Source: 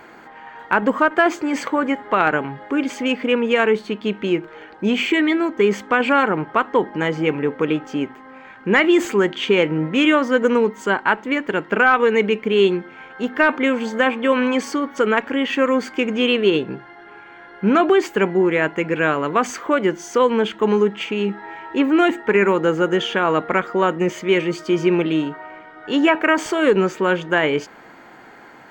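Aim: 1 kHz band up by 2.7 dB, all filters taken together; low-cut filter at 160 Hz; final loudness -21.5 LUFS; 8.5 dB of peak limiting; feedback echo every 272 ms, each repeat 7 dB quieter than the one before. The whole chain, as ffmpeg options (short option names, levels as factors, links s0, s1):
-af "highpass=160,equalizer=f=1000:t=o:g=3.5,alimiter=limit=0.355:level=0:latency=1,aecho=1:1:272|544|816|1088|1360:0.447|0.201|0.0905|0.0407|0.0183,volume=0.794"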